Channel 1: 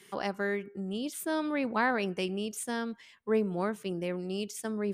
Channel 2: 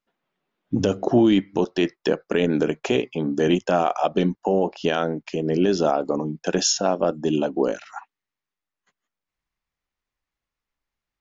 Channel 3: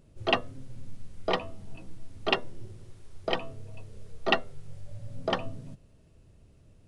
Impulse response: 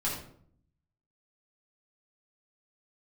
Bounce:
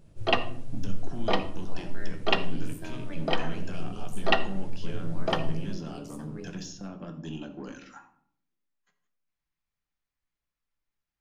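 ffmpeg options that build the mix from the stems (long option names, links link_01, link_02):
-filter_complex "[0:a]tremolo=f=88:d=0.947,adelay=1550,volume=-10dB,asplit=2[link_01][link_02];[link_02]volume=-7.5dB[link_03];[1:a]acrossover=split=260|1000[link_04][link_05][link_06];[link_04]acompressor=threshold=-28dB:ratio=4[link_07];[link_05]acompressor=threshold=-48dB:ratio=4[link_08];[link_06]acompressor=threshold=-40dB:ratio=4[link_09];[link_07][link_08][link_09]amix=inputs=3:normalize=0,asoftclip=type=tanh:threshold=-25dB,volume=-7.5dB,asplit=2[link_10][link_11];[link_11]volume=-10dB[link_12];[2:a]volume=-0.5dB,asplit=2[link_13][link_14];[link_14]volume=-12.5dB[link_15];[link_01][link_10]amix=inputs=2:normalize=0,equalizer=frequency=800:width_type=o:width=0.77:gain=-5.5,alimiter=level_in=9.5dB:limit=-24dB:level=0:latency=1,volume=-9.5dB,volume=0dB[link_16];[3:a]atrim=start_sample=2205[link_17];[link_03][link_12][link_15]amix=inputs=3:normalize=0[link_18];[link_18][link_17]afir=irnorm=-1:irlink=0[link_19];[link_13][link_16][link_19]amix=inputs=3:normalize=0"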